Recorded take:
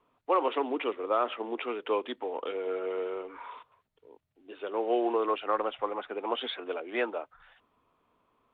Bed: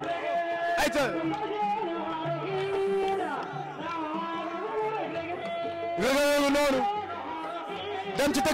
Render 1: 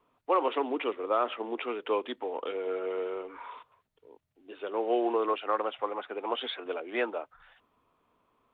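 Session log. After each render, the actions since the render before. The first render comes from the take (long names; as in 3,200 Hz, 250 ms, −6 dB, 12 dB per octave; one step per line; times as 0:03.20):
0:05.33–0:06.66: low-shelf EQ 120 Hz −12 dB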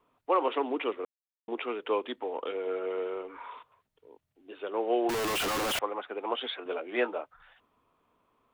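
0:01.05–0:01.48: silence
0:05.09–0:05.79: sign of each sample alone
0:06.64–0:07.21: double-tracking delay 16 ms −7.5 dB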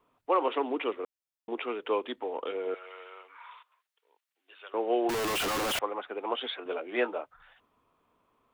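0:02.74–0:04.74: high-pass filter 1,300 Hz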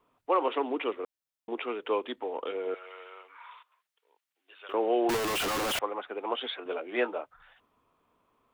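0:04.69–0:05.17: envelope flattener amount 50%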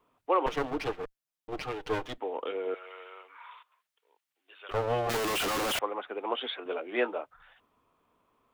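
0:00.46–0:02.18: lower of the sound and its delayed copy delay 6.5 ms
0:04.71–0:05.17: lower of the sound and its delayed copy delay 1.6 ms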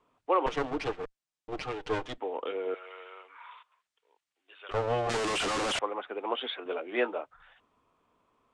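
Butterworth low-pass 9,100 Hz 36 dB per octave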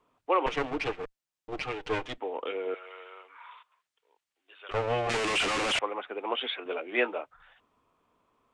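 dynamic equaliser 2,400 Hz, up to +7 dB, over −50 dBFS, Q 1.9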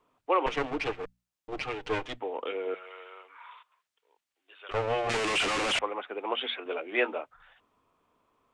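mains-hum notches 60/120/180/240 Hz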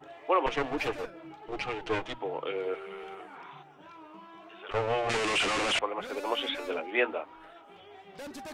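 mix in bed −17 dB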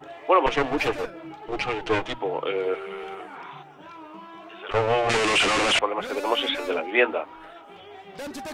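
level +7 dB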